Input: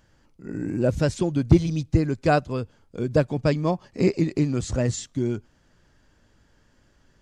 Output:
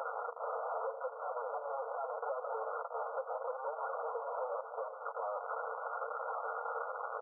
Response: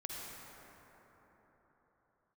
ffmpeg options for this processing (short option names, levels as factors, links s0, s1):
-filter_complex "[0:a]aeval=exprs='val(0)+0.5*0.0562*sgn(val(0))':c=same,aecho=1:1:6.3:0.39,asplit=2[s0][s1];[1:a]atrim=start_sample=2205[s2];[s1][s2]afir=irnorm=-1:irlink=0,volume=0.211[s3];[s0][s3]amix=inputs=2:normalize=0,acompressor=threshold=0.0562:ratio=16,asoftclip=type=hard:threshold=0.0141,afftfilt=real='re*between(b*sr/4096,510,1700)':imag='im*between(b*sr/4096,510,1700)':win_size=4096:overlap=0.75,flanger=delay=5.5:depth=6.3:regen=-27:speed=0.81:shape=triangular,aecho=1:1:92:0.0891,acontrast=23,asetrate=38170,aresample=44100,atempo=1.15535,alimiter=level_in=6.31:limit=0.0631:level=0:latency=1:release=370,volume=0.158,volume=3.55"